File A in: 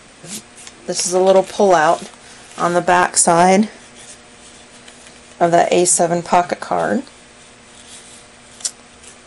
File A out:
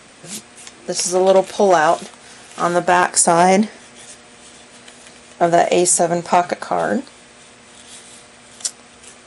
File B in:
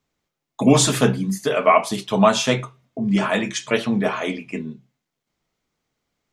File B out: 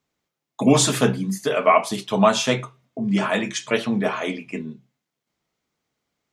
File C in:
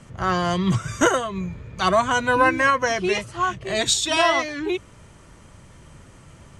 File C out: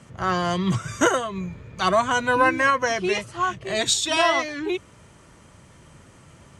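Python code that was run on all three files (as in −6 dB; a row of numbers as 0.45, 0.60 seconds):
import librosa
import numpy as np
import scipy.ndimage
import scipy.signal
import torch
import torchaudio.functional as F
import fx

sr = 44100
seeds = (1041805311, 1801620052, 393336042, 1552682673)

y = fx.highpass(x, sr, hz=91.0, slope=6)
y = y * 10.0 ** (-1.0 / 20.0)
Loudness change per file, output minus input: −1.0, −1.5, −1.0 LU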